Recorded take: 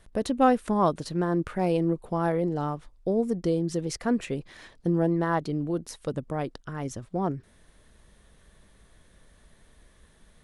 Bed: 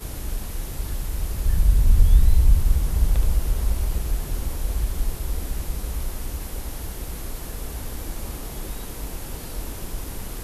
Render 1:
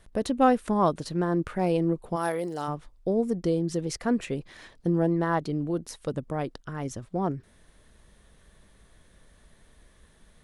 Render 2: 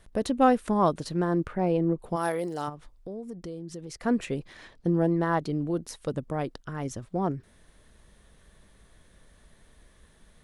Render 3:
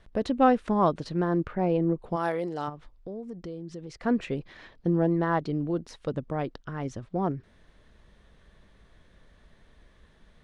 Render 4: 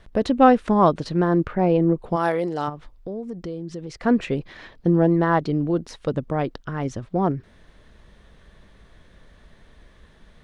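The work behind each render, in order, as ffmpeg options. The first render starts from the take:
-filter_complex "[0:a]asplit=3[s0][s1][s2];[s0]afade=t=out:st=2.15:d=0.02[s3];[s1]aemphasis=mode=production:type=riaa,afade=t=in:st=2.15:d=0.02,afade=t=out:st=2.67:d=0.02[s4];[s2]afade=t=in:st=2.67:d=0.02[s5];[s3][s4][s5]amix=inputs=3:normalize=0"
-filter_complex "[0:a]asplit=3[s0][s1][s2];[s0]afade=t=out:st=1.46:d=0.02[s3];[s1]lowpass=f=1700:p=1,afade=t=in:st=1.46:d=0.02,afade=t=out:st=1.98:d=0.02[s4];[s2]afade=t=in:st=1.98:d=0.02[s5];[s3][s4][s5]amix=inputs=3:normalize=0,asplit=3[s6][s7][s8];[s6]afade=t=out:st=2.68:d=0.02[s9];[s7]acompressor=threshold=0.00891:ratio=2.5:attack=3.2:release=140:knee=1:detection=peak,afade=t=in:st=2.68:d=0.02,afade=t=out:st=4.02:d=0.02[s10];[s8]afade=t=in:st=4.02:d=0.02[s11];[s9][s10][s11]amix=inputs=3:normalize=0,asettb=1/sr,asplit=3[s12][s13][s14];[s12]atrim=end=4.534[s15];[s13]atrim=start=4.53:end=5,asetpts=PTS-STARTPTS,afade=t=in:d=0.004:c=qsin,afade=t=out:st=0.466:d=0.004:c=qsin,highshelf=f=8100:g=-8.5[s16];[s14]atrim=start=4.996[s17];[s15][s16]acrossfade=d=0.004:c1=hsin:c2=qsin[s18];[s18][s17]acrossfade=d=0.004:c1=qsin:c2=hsin"
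-af "lowpass=4400"
-af "volume=2.11"

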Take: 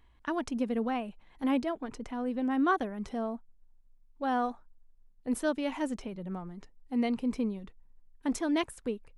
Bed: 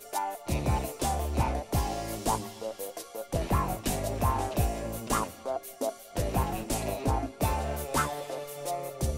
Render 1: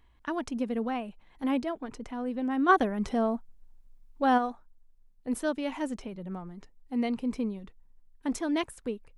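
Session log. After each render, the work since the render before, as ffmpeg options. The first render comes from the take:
-filter_complex "[0:a]asplit=3[s0][s1][s2];[s0]afade=t=out:st=2.68:d=0.02[s3];[s1]acontrast=74,afade=t=in:st=2.68:d=0.02,afade=t=out:st=4.37:d=0.02[s4];[s2]afade=t=in:st=4.37:d=0.02[s5];[s3][s4][s5]amix=inputs=3:normalize=0"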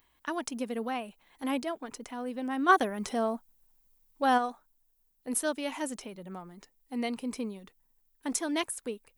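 -af "aemphasis=mode=production:type=bsi"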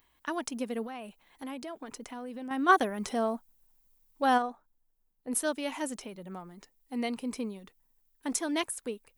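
-filter_complex "[0:a]asettb=1/sr,asplit=3[s0][s1][s2];[s0]atrim=end=0.844[s3];[s1]atrim=start=0.84:end=2.51,asetpts=PTS-STARTPTS,afade=t=in:d=0.004:c=qsin,afade=t=out:st=1.666:d=0.004:c=qsin,acompressor=threshold=0.0158:ratio=10:attack=3.2:release=140:knee=1:detection=peak[s4];[s2]atrim=start=2.506[s5];[s3][s4]acrossfade=d=0.004:c1=hsin:c2=qsin[s6];[s6][s5]acrossfade=d=0.004:c1=qsin:c2=hsin,asettb=1/sr,asplit=3[s7][s8][s9];[s7]atrim=end=4.424[s10];[s8]atrim=start=4.42:end=5.33,asetpts=PTS-STARTPTS,afade=t=in:d=0.004:c=qsin,afade=t=out:st=0.906:d=0.004:c=qsin,highshelf=f=2000:g=-11[s11];[s9]atrim=start=5.326[s12];[s10][s11]acrossfade=d=0.004:c1=hsin:c2=qsin[s13];[s13][s12]acrossfade=d=0.004:c1=qsin:c2=hsin"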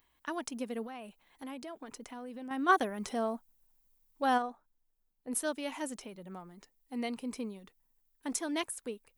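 -af "volume=0.668"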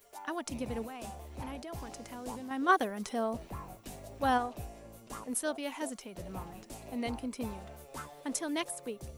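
-filter_complex "[1:a]volume=0.158[s0];[0:a][s0]amix=inputs=2:normalize=0"

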